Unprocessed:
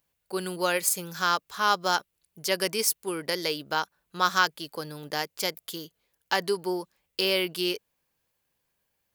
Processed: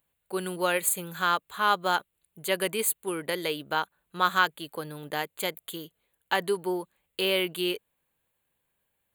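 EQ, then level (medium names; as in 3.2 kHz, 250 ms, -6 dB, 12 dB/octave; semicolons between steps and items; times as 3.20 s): Butterworth band-stop 5.4 kHz, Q 1.7; 0.0 dB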